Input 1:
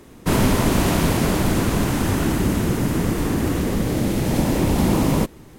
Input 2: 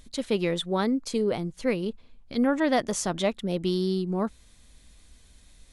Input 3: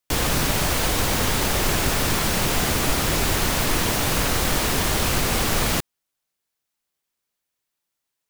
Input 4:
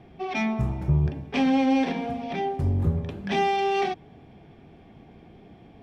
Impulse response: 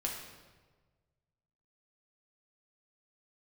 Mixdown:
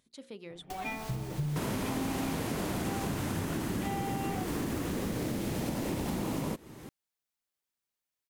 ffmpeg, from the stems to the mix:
-filter_complex "[0:a]highpass=f=110:p=1,acompressor=threshold=0.0141:ratio=1.5,adelay=1300,volume=1[s0];[1:a]highpass=120,volume=0.158,asplit=2[s1][s2];[2:a]adelay=600,volume=0.376[s3];[3:a]highshelf=f=5000:g=-11.5,aecho=1:1:6.6:0.96,adelay=500,volume=0.299[s4];[s2]apad=whole_len=392074[s5];[s3][s5]sidechaincompress=threshold=0.00282:ratio=8:attack=10:release=541[s6];[s1][s6]amix=inputs=2:normalize=0,bandreject=f=60:t=h:w=6,bandreject=f=120:t=h:w=6,bandreject=f=180:t=h:w=6,bandreject=f=240:t=h:w=6,bandreject=f=300:t=h:w=6,bandreject=f=360:t=h:w=6,bandreject=f=420:t=h:w=6,bandreject=f=480:t=h:w=6,bandreject=f=540:t=h:w=6,acompressor=threshold=0.00891:ratio=5,volume=1[s7];[s0][s4][s7]amix=inputs=3:normalize=0,acompressor=threshold=0.0316:ratio=6"

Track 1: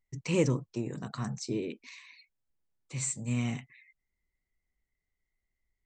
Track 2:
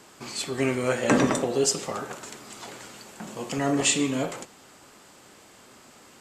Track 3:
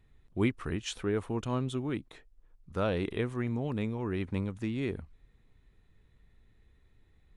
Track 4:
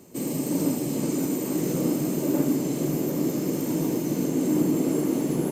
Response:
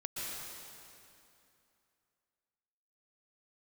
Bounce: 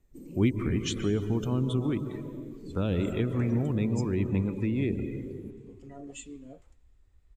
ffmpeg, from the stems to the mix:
-filter_complex "[0:a]volume=0.133[s0];[1:a]adelay=2300,volume=0.112,asplit=2[s1][s2];[s2]volume=0.0794[s3];[2:a]volume=1.41,asplit=2[s4][s5];[s5]volume=0.562[s6];[3:a]acompressor=threshold=0.0316:ratio=6,volume=0.266[s7];[4:a]atrim=start_sample=2205[s8];[s3][s6]amix=inputs=2:normalize=0[s9];[s9][s8]afir=irnorm=-1:irlink=0[s10];[s0][s1][s4][s7][s10]amix=inputs=5:normalize=0,afftdn=nr=16:nf=-39,acrossover=split=370|3000[s11][s12][s13];[s12]acompressor=threshold=0.0112:ratio=6[s14];[s11][s14][s13]amix=inputs=3:normalize=0"

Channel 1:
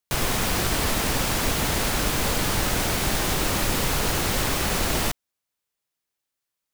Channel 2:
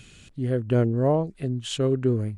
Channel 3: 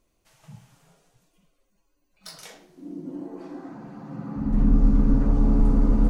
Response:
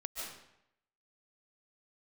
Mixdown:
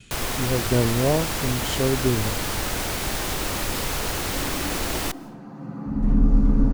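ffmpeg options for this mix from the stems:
-filter_complex "[0:a]equalizer=f=160:t=o:w=0.77:g=-3.5,volume=0.708,asplit=2[s0][s1];[s1]volume=0.0794[s2];[1:a]agate=range=0.0224:threshold=0.00355:ratio=3:detection=peak,volume=1[s3];[2:a]adelay=1500,volume=1.06[s4];[3:a]atrim=start_sample=2205[s5];[s2][s5]afir=irnorm=-1:irlink=0[s6];[s0][s3][s4][s6]amix=inputs=4:normalize=0"

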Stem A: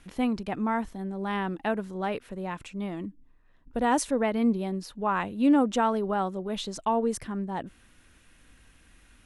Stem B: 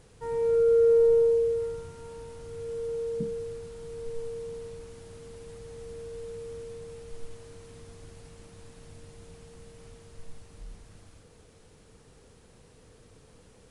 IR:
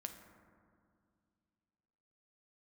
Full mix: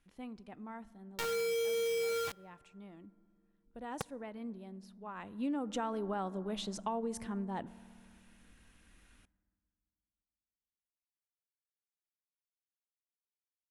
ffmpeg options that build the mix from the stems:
-filter_complex "[0:a]volume=0.398,afade=t=in:st=5.15:d=0.52:silence=0.223872,asplit=2[s0][s1];[s1]volume=0.422[s2];[1:a]highpass=120,acrusher=bits=3:mix=0:aa=0.000001,adelay=800,volume=0.562,asplit=2[s3][s4];[s4]volume=0.126[s5];[2:a]atrim=start_sample=2205[s6];[s2][s5]amix=inputs=2:normalize=0[s7];[s7][s6]afir=irnorm=-1:irlink=0[s8];[s0][s3][s8]amix=inputs=3:normalize=0,acompressor=threshold=0.0251:ratio=12"

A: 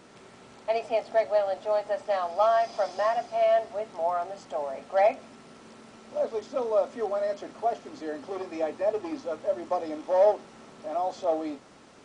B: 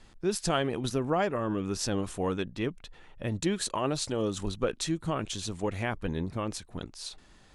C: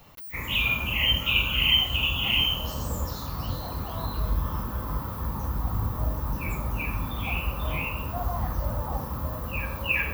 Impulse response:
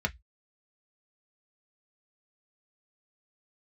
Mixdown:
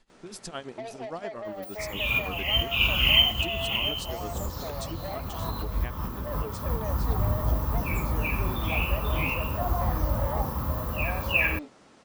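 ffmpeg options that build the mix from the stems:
-filter_complex "[0:a]acompressor=threshold=0.0398:ratio=6,asoftclip=type=tanh:threshold=0.0282,adelay=100,volume=0.75[s0];[1:a]equalizer=f=76:t=o:w=1.1:g=-12.5,tremolo=f=8.7:d=0.84,volume=0.473,asplit=2[s1][s2];[2:a]adelay=1450,volume=1.26[s3];[s2]apad=whole_len=511102[s4];[s3][s4]sidechaincompress=threshold=0.00631:ratio=4:attack=11:release=285[s5];[s0][s1][s5]amix=inputs=3:normalize=0"

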